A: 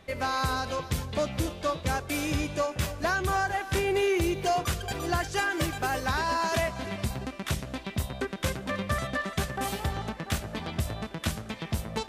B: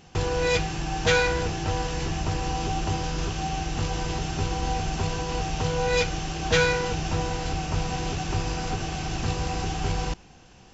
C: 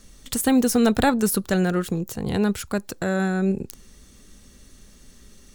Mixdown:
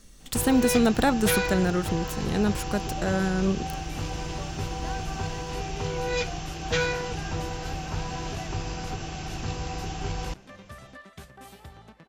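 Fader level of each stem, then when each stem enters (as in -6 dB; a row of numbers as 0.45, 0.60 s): -15.5, -4.5, -3.0 dB; 1.80, 0.20, 0.00 s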